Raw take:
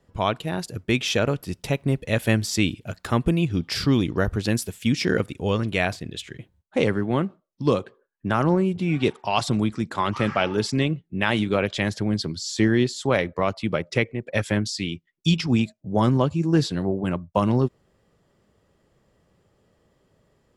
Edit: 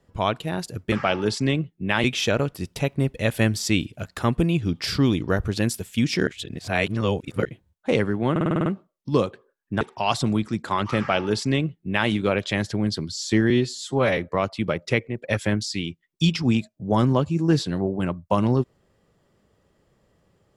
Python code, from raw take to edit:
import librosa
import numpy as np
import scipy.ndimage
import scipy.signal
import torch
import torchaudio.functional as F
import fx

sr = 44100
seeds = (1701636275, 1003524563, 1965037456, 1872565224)

y = fx.edit(x, sr, fx.reverse_span(start_s=5.15, length_s=1.18),
    fx.stutter(start_s=7.19, slice_s=0.05, count=8),
    fx.cut(start_s=8.34, length_s=0.74),
    fx.duplicate(start_s=10.24, length_s=1.12, to_s=0.92),
    fx.stretch_span(start_s=12.77, length_s=0.45, factor=1.5), tone=tone)